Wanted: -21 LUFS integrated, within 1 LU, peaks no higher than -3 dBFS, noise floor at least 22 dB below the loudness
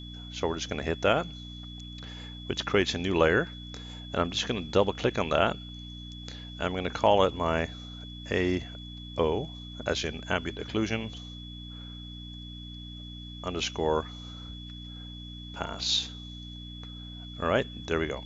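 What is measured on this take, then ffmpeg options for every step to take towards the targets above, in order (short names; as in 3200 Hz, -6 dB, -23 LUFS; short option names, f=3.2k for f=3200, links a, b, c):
hum 60 Hz; harmonics up to 300 Hz; hum level -41 dBFS; steady tone 3400 Hz; tone level -45 dBFS; loudness -29.0 LUFS; peak -8.5 dBFS; loudness target -21.0 LUFS
-> -af "bandreject=f=60:t=h:w=4,bandreject=f=120:t=h:w=4,bandreject=f=180:t=h:w=4,bandreject=f=240:t=h:w=4,bandreject=f=300:t=h:w=4"
-af "bandreject=f=3.4k:w=30"
-af "volume=8dB,alimiter=limit=-3dB:level=0:latency=1"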